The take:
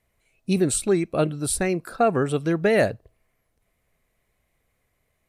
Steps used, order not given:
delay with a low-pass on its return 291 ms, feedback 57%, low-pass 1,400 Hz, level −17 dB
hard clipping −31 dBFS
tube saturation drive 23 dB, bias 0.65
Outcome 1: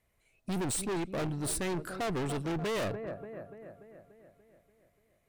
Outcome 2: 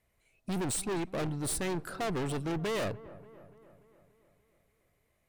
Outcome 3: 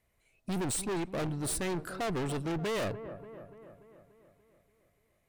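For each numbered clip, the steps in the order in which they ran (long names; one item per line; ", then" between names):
delay with a low-pass on its return, then tube saturation, then hard clipping
tube saturation, then hard clipping, then delay with a low-pass on its return
tube saturation, then delay with a low-pass on its return, then hard clipping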